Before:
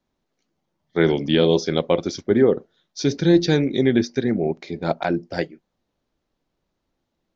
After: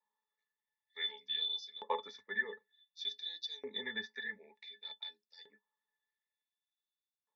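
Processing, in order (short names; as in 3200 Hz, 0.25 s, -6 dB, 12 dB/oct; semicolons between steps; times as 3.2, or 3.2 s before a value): octave resonator A, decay 0.1 s; frequency shift -18 Hz; LFO high-pass saw up 0.55 Hz 950–5600 Hz; gain +3.5 dB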